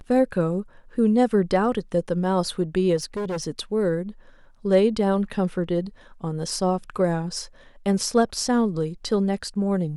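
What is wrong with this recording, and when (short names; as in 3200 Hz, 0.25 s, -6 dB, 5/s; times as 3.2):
2.96–3.44 clipped -24.5 dBFS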